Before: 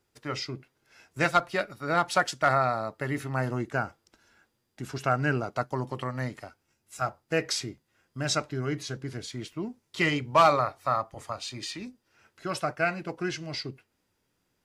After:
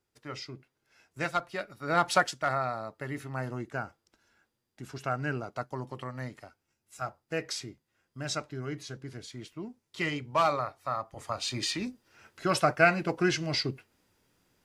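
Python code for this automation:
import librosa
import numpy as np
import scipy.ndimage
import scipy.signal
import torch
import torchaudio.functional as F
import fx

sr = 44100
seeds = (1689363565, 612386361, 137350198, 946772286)

y = fx.gain(x, sr, db=fx.line((1.64, -7.0), (2.11, 2.0), (2.43, -6.0), (10.96, -6.0), (11.52, 5.0)))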